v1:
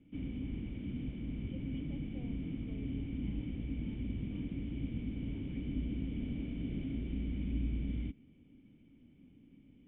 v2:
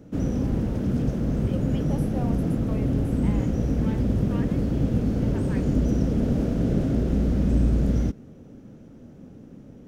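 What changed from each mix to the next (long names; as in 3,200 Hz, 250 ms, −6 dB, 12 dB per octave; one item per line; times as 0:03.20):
background: add octave-band graphic EQ 125/250/500/1,000/2,000/4,000 Hz +4/+11/+6/−8/−9/−6 dB
master: remove formant resonators in series i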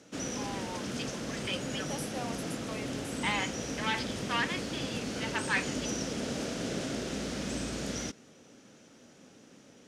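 first voice +10.5 dB
master: add meter weighting curve ITU-R 468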